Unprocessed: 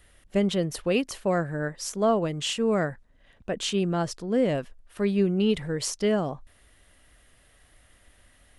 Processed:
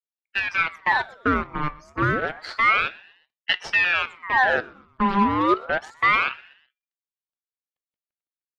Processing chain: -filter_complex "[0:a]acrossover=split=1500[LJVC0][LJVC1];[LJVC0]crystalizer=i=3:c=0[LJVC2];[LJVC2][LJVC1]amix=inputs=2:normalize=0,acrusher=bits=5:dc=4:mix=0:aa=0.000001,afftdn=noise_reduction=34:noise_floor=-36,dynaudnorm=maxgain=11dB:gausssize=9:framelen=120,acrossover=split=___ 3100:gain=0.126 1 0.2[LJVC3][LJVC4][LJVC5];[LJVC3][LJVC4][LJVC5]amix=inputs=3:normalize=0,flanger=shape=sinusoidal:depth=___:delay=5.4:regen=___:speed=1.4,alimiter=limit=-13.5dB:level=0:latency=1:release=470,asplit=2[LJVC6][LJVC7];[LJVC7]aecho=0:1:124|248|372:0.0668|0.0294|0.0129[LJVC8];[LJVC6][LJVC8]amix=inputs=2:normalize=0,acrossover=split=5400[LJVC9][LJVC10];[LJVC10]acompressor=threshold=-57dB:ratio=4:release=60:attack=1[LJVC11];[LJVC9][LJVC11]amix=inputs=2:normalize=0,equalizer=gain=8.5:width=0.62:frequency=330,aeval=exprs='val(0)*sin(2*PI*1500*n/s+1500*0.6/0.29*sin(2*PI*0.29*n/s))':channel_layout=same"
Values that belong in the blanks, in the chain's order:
320, 3.5, 83